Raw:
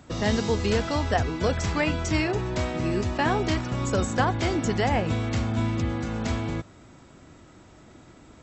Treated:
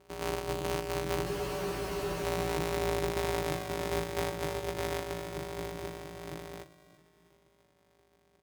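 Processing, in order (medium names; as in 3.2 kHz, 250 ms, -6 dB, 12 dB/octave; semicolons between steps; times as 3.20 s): sorted samples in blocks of 256 samples; Doppler pass-by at 2.48 s, 5 m/s, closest 5 m; on a send: feedback delay 332 ms, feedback 46%, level -16 dB; on the sum: ring modulator 230 Hz; peak limiter -20.5 dBFS, peak gain reduction 8.5 dB; high-pass 65 Hz; comb 5.2 ms, depth 39%; spectral freeze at 1.27 s, 0.97 s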